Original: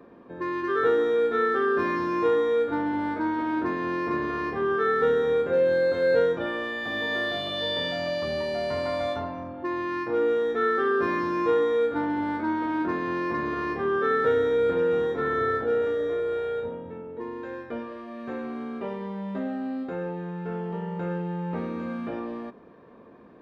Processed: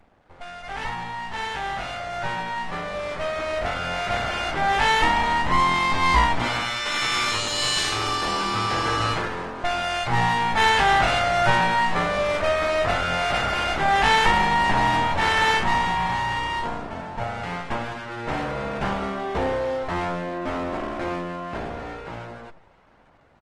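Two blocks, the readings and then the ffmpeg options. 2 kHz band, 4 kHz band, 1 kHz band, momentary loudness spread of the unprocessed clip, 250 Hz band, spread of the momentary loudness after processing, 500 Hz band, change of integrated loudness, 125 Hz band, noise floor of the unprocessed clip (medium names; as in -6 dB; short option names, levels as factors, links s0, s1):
+8.0 dB, +11.0 dB, +9.0 dB, 12 LU, -3.0 dB, 13 LU, -4.5 dB, +3.5 dB, +7.5 dB, -48 dBFS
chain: -af "lowshelf=f=260:g=-2.5,dynaudnorm=f=640:g=11:m=7.08,aeval=exprs='abs(val(0))':c=same,aresample=22050,aresample=44100,volume=0.794" -ar 48000 -c:a libopus -b:a 20k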